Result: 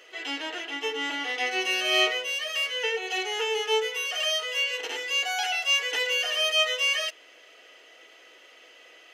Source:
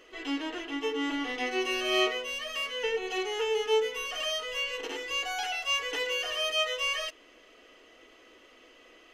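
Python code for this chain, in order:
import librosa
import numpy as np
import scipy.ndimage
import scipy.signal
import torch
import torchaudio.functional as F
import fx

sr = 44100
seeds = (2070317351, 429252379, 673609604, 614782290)

y = scipy.signal.sosfilt(scipy.signal.butter(2, 610.0, 'highpass', fs=sr, output='sos'), x)
y = fx.peak_eq(y, sr, hz=1100.0, db=-9.5, octaves=0.28)
y = y * 10.0 ** (6.0 / 20.0)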